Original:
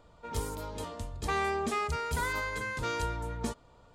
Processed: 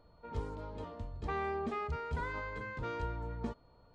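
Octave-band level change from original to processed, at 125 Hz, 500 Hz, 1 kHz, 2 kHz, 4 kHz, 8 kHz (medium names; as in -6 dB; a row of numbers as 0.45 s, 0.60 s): -3.5 dB, -4.5 dB, -6.0 dB, -8.5 dB, -14.0 dB, under -20 dB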